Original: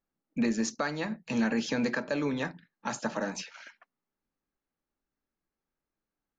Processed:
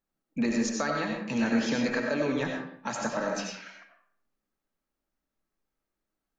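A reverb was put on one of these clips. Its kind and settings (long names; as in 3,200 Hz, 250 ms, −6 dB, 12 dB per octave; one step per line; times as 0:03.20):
comb and all-pass reverb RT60 0.61 s, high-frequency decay 0.65×, pre-delay 50 ms, DRR 0.5 dB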